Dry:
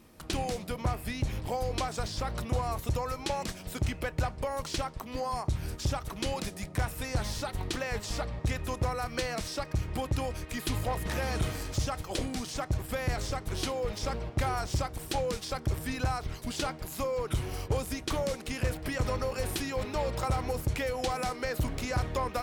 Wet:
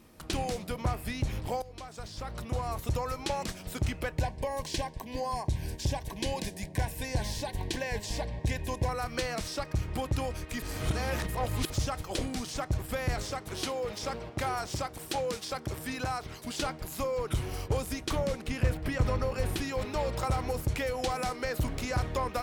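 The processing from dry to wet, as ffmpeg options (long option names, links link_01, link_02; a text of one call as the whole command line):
ffmpeg -i in.wav -filter_complex "[0:a]asettb=1/sr,asplit=3[link_01][link_02][link_03];[link_01]atrim=end=4.184[link_04];[link_02]atrim=start=4.18:end=8.89,asetpts=PTS-STARTPTS,afade=type=in:duration=0.004:curve=qsin,afade=type=out:start_time=4.706:duration=0.004:curve=qsin,asuperstop=centerf=1300:order=8:qfactor=3.3[link_05];[link_03]atrim=start=8.886[link_06];[link_04][link_05]acrossfade=duration=0.004:curve1=hsin:curve2=qsin[link_07];[link_07][link_06]acrossfade=duration=0.004:curve1=qsin:curve2=hsin,asettb=1/sr,asplit=3[link_08][link_09][link_10];[link_08]atrim=end=13.224[link_11];[link_09]atrim=start=13.22:end=16.6,asetpts=PTS-STARTPTS,afade=type=in:duration=0.004:curve=qsin,afade=type=out:start_time=3.376:duration=0.004:curve=qsin,highpass=frequency=180:poles=1[link_12];[link_10]atrim=start=16.596[link_13];[link_11][link_12]acrossfade=duration=0.004:curve1=hsin:curve2=qsin[link_14];[link_14][link_13]acrossfade=duration=0.004:curve1=qsin:curve2=hsin,asettb=1/sr,asplit=3[link_15][link_16][link_17];[link_15]atrim=end=18.154[link_18];[link_16]atrim=start=18.15:end=19.62,asetpts=PTS-STARTPTS,afade=type=in:duration=0.004:curve=qsin,afade=type=out:start_time=1.466:duration=0.004:curve=qsin,bass=frequency=250:gain=4,treble=frequency=4000:gain=-5[link_19];[link_17]atrim=start=19.616[link_20];[link_18][link_19]acrossfade=duration=0.004:curve1=hsin:curve2=qsin[link_21];[link_21][link_20]acrossfade=duration=0.004:curve1=qsin:curve2=hsin,asplit=4[link_22][link_23][link_24][link_25];[link_22]atrim=end=1.62,asetpts=PTS-STARTPTS,afade=type=out:start_time=1.616:duration=0.004:curve=hsin:silence=0.11885[link_26];[link_23]atrim=start=1.62:end=10.622,asetpts=PTS-STARTPTS,afade=type=in:duration=1.34:silence=0.11885[link_27];[link_24]atrim=start=10.618:end=11.702,asetpts=PTS-STARTPTS,areverse[link_28];[link_25]atrim=start=11.698[link_29];[link_26][link_27]concat=n=2:v=0:a=1[link_30];[link_30][link_28]acrossfade=duration=0.004:curve1=hsin:curve2=hsin[link_31];[link_31][link_29]acrossfade=duration=0.004:curve1=hsin:curve2=hsin" out.wav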